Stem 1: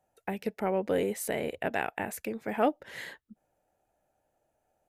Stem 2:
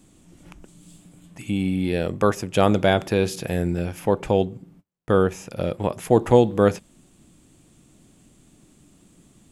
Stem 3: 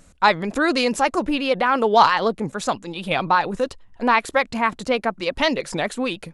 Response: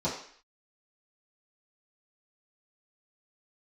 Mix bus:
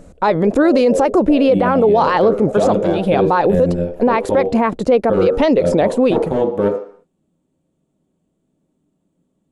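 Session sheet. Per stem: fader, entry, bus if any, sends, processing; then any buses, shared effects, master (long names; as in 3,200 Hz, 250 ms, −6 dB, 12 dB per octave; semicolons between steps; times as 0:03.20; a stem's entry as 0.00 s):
−11.5 dB, 0.00 s, no send, low-pass with resonance 620 Hz
−0.5 dB, 0.00 s, send −11 dB, wavefolder on the positive side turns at −15 dBFS; brickwall limiter −11.5 dBFS, peak gain reduction 10 dB; expander for the loud parts 2.5 to 1, over −35 dBFS
−1.5 dB, 0.00 s, no send, low-shelf EQ 340 Hz +11 dB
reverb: on, RT60 0.55 s, pre-delay 3 ms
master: parametric band 490 Hz +14.5 dB 1.9 octaves; brickwall limiter −5.5 dBFS, peak gain reduction 12.5 dB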